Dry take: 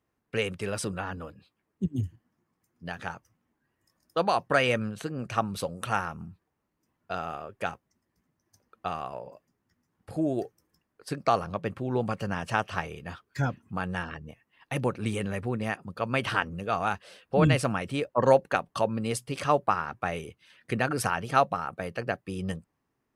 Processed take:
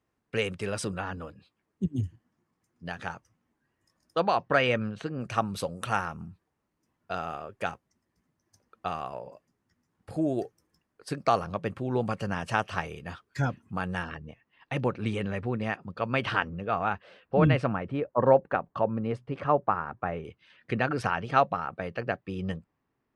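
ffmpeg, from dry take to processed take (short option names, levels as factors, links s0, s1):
-af "asetnsamples=n=441:p=0,asendcmd='4.2 lowpass f 4200;5.21 lowpass f 11000;14.15 lowpass f 4500;16.5 lowpass f 2500;17.73 lowpass f 1500;20.25 lowpass f 3800',lowpass=9400"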